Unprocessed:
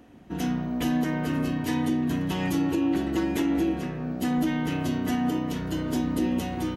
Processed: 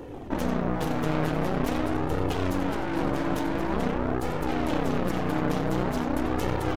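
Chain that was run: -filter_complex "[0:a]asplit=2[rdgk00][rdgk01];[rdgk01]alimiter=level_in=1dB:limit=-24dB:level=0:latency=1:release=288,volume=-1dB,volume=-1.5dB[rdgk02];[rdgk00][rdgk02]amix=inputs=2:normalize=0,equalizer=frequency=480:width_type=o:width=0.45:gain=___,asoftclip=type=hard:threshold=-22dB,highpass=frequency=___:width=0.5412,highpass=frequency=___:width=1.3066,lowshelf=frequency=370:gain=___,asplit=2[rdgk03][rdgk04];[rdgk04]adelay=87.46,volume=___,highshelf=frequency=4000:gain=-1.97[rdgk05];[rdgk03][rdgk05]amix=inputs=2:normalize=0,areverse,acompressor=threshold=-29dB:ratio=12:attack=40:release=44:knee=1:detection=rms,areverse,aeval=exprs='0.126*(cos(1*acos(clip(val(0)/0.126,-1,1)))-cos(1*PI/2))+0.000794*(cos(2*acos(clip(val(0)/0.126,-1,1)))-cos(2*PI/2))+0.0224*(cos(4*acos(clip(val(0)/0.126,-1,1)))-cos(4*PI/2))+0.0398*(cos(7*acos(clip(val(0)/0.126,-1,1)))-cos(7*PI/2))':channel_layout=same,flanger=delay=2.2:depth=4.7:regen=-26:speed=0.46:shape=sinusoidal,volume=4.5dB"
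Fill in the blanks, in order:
9, 59, 59, 11, -13dB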